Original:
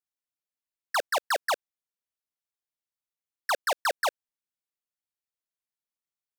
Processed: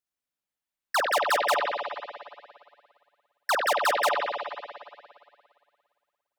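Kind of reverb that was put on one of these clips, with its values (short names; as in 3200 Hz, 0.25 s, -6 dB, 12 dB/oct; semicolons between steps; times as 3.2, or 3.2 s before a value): spring tank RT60 2.1 s, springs 57 ms, chirp 35 ms, DRR -1 dB; gain +1.5 dB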